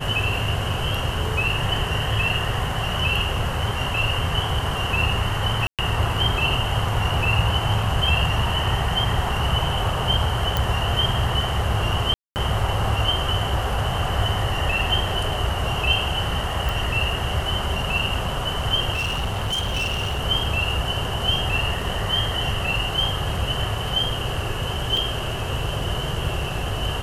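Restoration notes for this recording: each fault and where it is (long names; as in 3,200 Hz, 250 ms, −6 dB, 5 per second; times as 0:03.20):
0:05.67–0:05.79: drop-out 117 ms
0:10.57: click
0:12.14–0:12.36: drop-out 219 ms
0:16.69: click
0:18.94–0:20.20: clipping −20.5 dBFS
0:24.97: drop-out 2.4 ms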